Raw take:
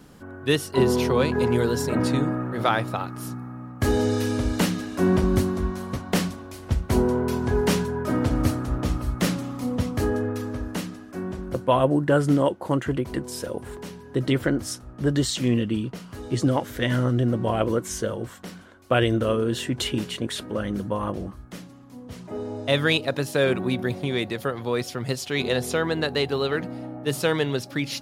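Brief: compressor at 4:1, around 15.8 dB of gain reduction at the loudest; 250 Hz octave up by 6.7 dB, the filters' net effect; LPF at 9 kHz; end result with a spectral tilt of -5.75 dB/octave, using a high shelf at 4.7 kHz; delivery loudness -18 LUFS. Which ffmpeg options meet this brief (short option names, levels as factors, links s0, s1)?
-af "lowpass=9000,equalizer=f=250:t=o:g=8,highshelf=f=4700:g=3.5,acompressor=threshold=0.0282:ratio=4,volume=5.96"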